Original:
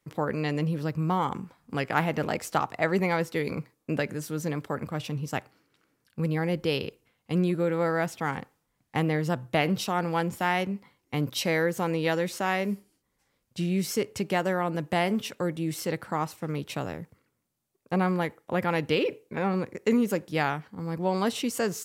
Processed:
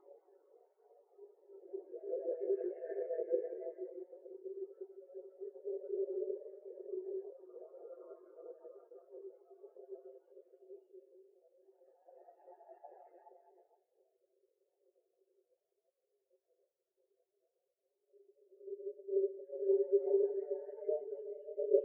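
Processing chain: on a send: swelling echo 0.187 s, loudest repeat 5, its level -16 dB; on the sum: vibrato 1.4 Hz 8.9 cents; Paulstretch 7.3×, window 0.50 s, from 3.61; ring modulator 80 Hz; steep high-pass 330 Hz 48 dB/oct; spectral expander 4:1; gain +4.5 dB

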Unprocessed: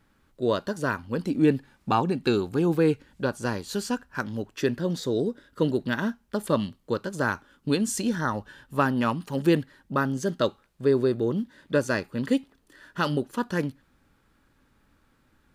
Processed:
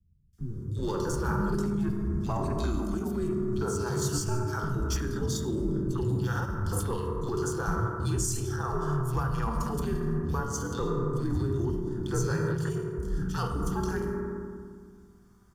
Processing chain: sample leveller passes 1; notch 4100 Hz, Q 7.4; frequency shift -110 Hz; fifteen-band EQ 250 Hz -4 dB, 630 Hz -6 dB, 2500 Hz -11 dB, 6300 Hz +6 dB; flange 0.61 Hz, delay 4.3 ms, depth 2 ms, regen -72%; on a send at -4 dB: high shelf 9000 Hz +9.5 dB + reverb RT60 1.8 s, pre-delay 3 ms; on the sum: limiter -28 dBFS, peak gain reduction 17 dB; three bands offset in time lows, highs, mids 0.33/0.38 s, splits 230/2600 Hz; gain +7 dB

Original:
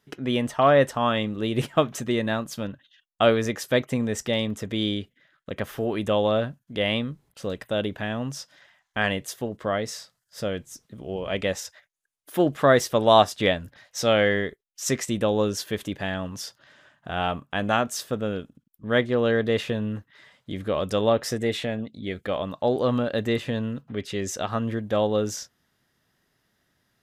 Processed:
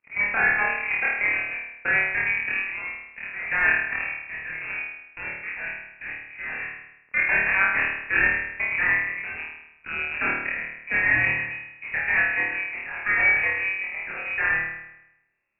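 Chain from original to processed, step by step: switching dead time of 0.28 ms; level quantiser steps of 12 dB; spring tank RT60 1.5 s, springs 45 ms, chirp 70 ms, DRR -5.5 dB; speed mistake 45 rpm record played at 78 rpm; inverted band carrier 2700 Hz; gain -1 dB

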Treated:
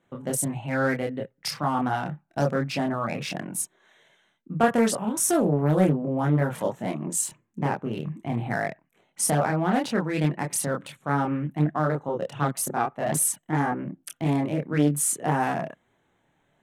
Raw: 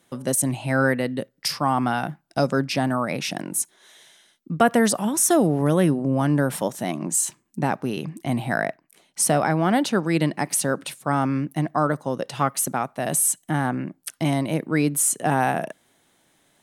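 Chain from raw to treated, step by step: Wiener smoothing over 9 samples; chorus voices 6, 0.63 Hz, delay 27 ms, depth 1.3 ms; Doppler distortion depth 0.31 ms

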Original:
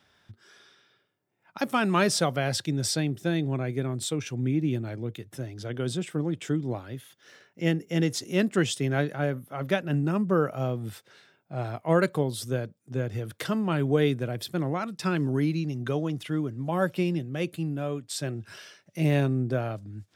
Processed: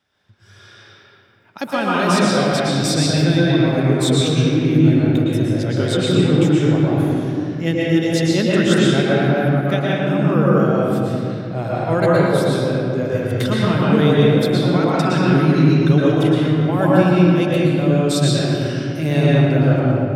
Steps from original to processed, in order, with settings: dynamic EQ 3700 Hz, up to +7 dB, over -55 dBFS, Q 6.7; AGC gain up to 15.5 dB; reverb RT60 2.8 s, pre-delay 0.107 s, DRR -6.5 dB; gain -7.5 dB

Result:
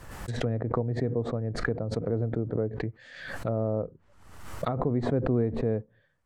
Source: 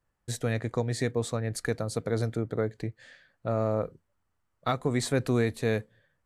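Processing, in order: treble ducked by the level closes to 660 Hz, closed at -27 dBFS; backwards sustainer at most 56 dB/s

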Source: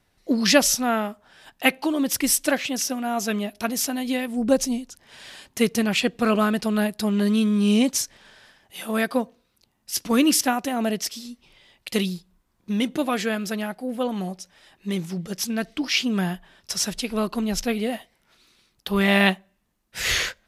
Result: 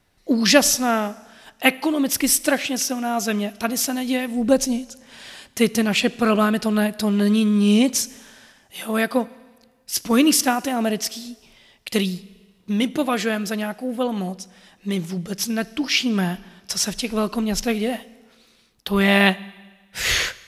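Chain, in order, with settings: Schroeder reverb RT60 1.4 s, combs from 27 ms, DRR 19.5 dB; gain +2.5 dB

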